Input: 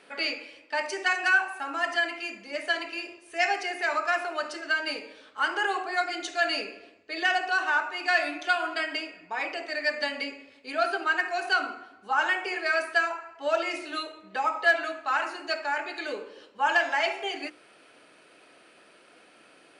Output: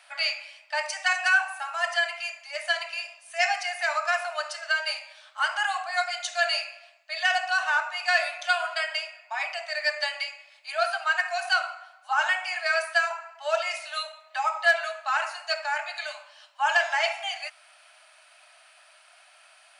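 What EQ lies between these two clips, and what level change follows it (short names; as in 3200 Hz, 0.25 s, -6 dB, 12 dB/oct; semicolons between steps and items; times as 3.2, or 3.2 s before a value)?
brick-wall FIR high-pass 580 Hz; high shelf 4100 Hz +7.5 dB; 0.0 dB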